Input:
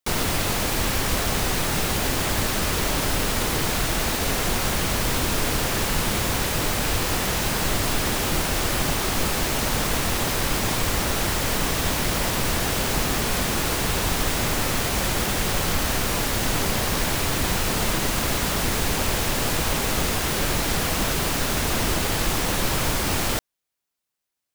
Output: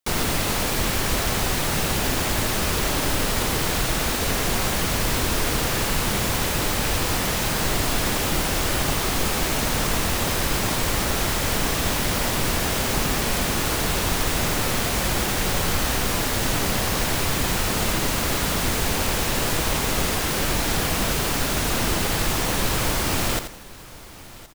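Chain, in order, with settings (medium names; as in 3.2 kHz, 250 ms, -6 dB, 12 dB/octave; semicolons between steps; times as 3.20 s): on a send: feedback delay 1071 ms, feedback 40%, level -19.5 dB; on the sum: bit-crushed delay 84 ms, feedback 35%, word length 7-bit, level -9 dB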